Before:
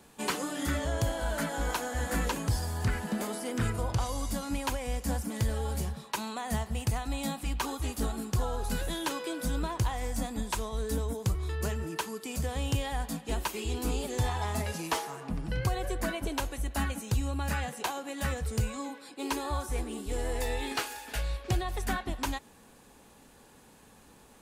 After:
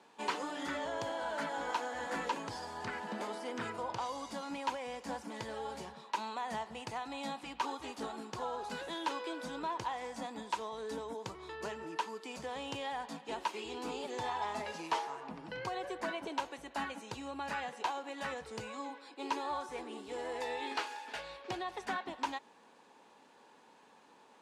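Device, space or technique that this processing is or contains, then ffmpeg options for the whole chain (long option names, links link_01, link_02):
intercom: -af "highpass=320,lowpass=4800,equalizer=frequency=930:width_type=o:width=0.24:gain=8,asoftclip=type=tanh:threshold=-20dB,volume=-3.5dB"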